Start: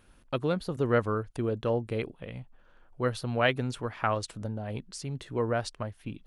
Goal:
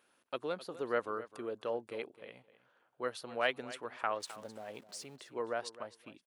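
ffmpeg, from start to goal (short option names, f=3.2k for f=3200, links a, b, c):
-filter_complex "[0:a]asettb=1/sr,asplit=3[a][b][c];[a]atrim=end=4.204[d];[b]atrim=start=4.2:end=5.16,asetpts=PTS-STARTPTS,afade=t=in:d=0.004:c=qsin,afade=t=out:st=0.956:d=0.004:c=qsin,aeval=exprs='val(0)+0.5*0.00501*sgn(val(0))':c=same[e];[c]atrim=start=5.156[f];[d][e]acrossfade=d=0.004:c1=hsin:c2=qsin[g];[g][f]acrossfade=d=0.004:c1=qsin:c2=hsin,highpass=400,aecho=1:1:259|518:0.158|0.0269,volume=-6dB"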